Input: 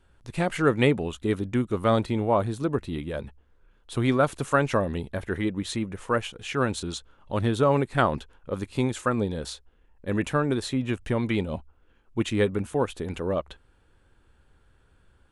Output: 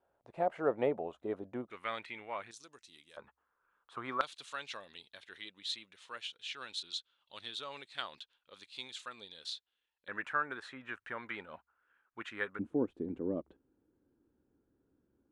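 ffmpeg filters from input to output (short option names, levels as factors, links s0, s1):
-af "asetnsamples=n=441:p=0,asendcmd='1.7 bandpass f 2200;2.51 bandpass f 5900;3.17 bandpass f 1200;4.21 bandpass f 3800;10.08 bandpass f 1500;12.59 bandpass f 290',bandpass=f=660:t=q:w=3:csg=0"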